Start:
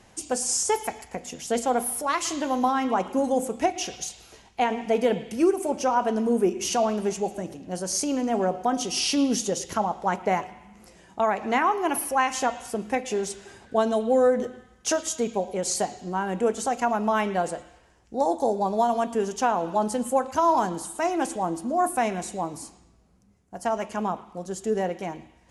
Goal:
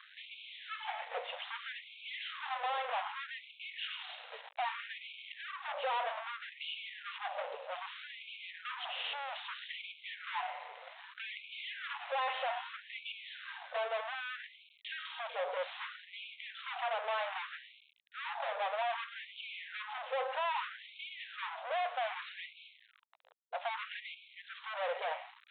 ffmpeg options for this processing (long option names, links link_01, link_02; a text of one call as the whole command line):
ffmpeg -i in.wav -af "alimiter=limit=-17dB:level=0:latency=1:release=406,aeval=exprs='(tanh(126*val(0)+0.8)-tanh(0.8))/126':channel_layout=same,aresample=8000,aeval=exprs='val(0)*gte(abs(val(0)),0.00119)':channel_layout=same,aresample=44100,afftfilt=real='re*gte(b*sr/1024,430*pow(2200/430,0.5+0.5*sin(2*PI*0.63*pts/sr)))':imag='im*gte(b*sr/1024,430*pow(2200/430,0.5+0.5*sin(2*PI*0.63*pts/sr)))':win_size=1024:overlap=0.75,volume=10dB" out.wav